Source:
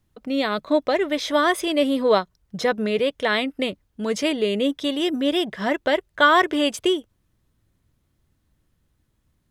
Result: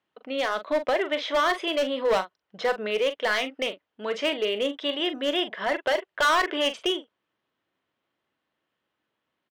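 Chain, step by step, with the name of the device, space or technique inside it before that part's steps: megaphone (band-pass 490–2800 Hz; peaking EQ 3 kHz +5.5 dB 0.33 oct; hard clipper -18.5 dBFS, distortion -9 dB; doubling 42 ms -11 dB)

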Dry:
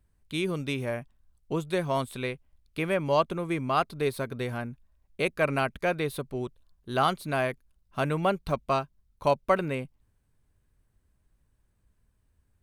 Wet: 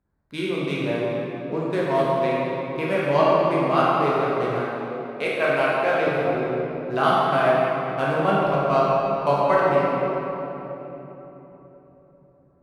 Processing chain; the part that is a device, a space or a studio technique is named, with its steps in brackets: local Wiener filter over 15 samples; swimming-pool hall (reverberation RT60 3.7 s, pre-delay 11 ms, DRR -7 dB; treble shelf 4.2 kHz -7.5 dB); 4.64–6.07 s: bass shelf 200 Hz -10.5 dB; high-pass 280 Hz 6 dB/octave; trim +1.5 dB

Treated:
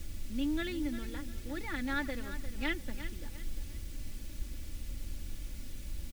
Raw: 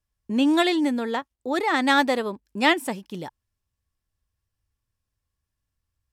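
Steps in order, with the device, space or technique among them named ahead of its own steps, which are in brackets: horn gramophone (band-pass 290–3700 Hz; peaking EQ 1.5 kHz +8 dB; wow and flutter; pink noise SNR 11 dB); amplifier tone stack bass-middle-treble 10-0-1; peaking EQ 2.2 kHz +2.5 dB 0.25 oct; comb 3.5 ms, depth 58%; feedback delay 351 ms, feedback 35%, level -12 dB; trim +5.5 dB

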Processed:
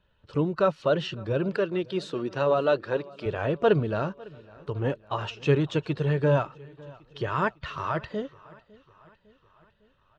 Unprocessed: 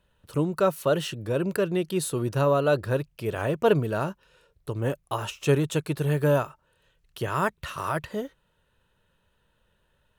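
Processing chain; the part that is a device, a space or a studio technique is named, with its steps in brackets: clip after many re-uploads (low-pass 4.9 kHz 24 dB/octave; coarse spectral quantiser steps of 15 dB); 1.55–3.26 s: high-pass 240 Hz 12 dB/octave; feedback delay 554 ms, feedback 57%, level -23 dB

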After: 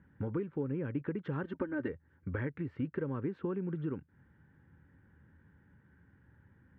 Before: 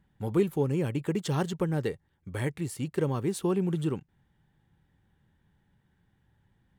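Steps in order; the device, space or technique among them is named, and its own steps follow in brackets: 1.43–1.88 s: comb 3.3 ms, depth 95%; bass amplifier (compression 5:1, threshold -40 dBFS, peak gain reduction 18.5 dB; cabinet simulation 66–2200 Hz, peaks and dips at 81 Hz +8 dB, 270 Hz +7 dB, 510 Hz +4 dB, 720 Hz -9 dB, 1.5 kHz +8 dB); trim +4 dB

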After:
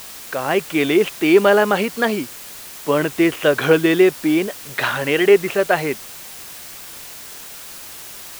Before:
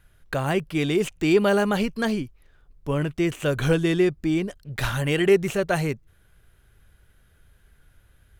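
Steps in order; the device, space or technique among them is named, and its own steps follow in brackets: dictaphone (band-pass 330–3300 Hz; level rider; wow and flutter; white noise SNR 17 dB)

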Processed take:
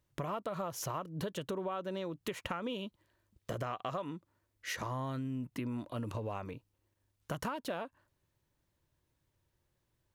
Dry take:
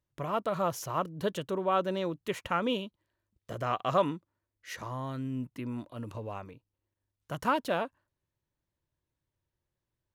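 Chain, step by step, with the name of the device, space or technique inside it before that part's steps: serial compression, peaks first (compression 5:1, threshold -36 dBFS, peak gain reduction 14.5 dB; compression 2.5:1, threshold -44 dBFS, peak gain reduction 8 dB); trim +7 dB

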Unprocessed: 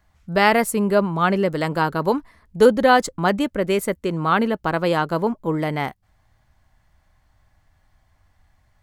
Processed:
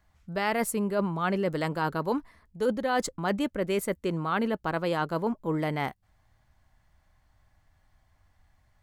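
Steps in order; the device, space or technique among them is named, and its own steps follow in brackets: compression on the reversed sound (reverse; compression 6:1, threshold -19 dBFS, peak gain reduction 10.5 dB; reverse); trim -4.5 dB

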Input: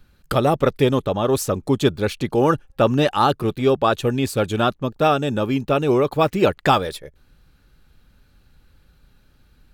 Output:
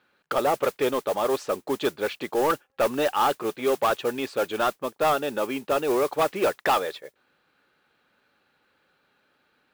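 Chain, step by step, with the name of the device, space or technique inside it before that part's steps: carbon microphone (band-pass 450–3000 Hz; saturation -15.5 dBFS, distortion -12 dB; modulation noise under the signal 18 dB)

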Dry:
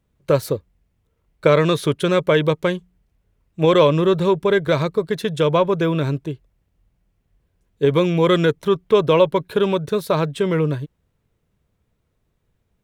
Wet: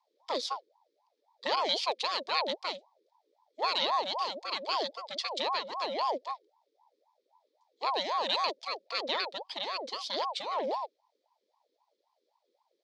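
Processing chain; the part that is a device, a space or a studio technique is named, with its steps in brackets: FFT filter 150 Hz 0 dB, 310 Hz -19 dB, 1.1 kHz -19 dB, 4.1 kHz +9 dB; voice changer toy (ring modulator with a swept carrier 660 Hz, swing 45%, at 3.8 Hz; cabinet simulation 590–4800 Hz, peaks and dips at 740 Hz -7 dB, 1.5 kHz -6 dB, 2.8 kHz -10 dB)

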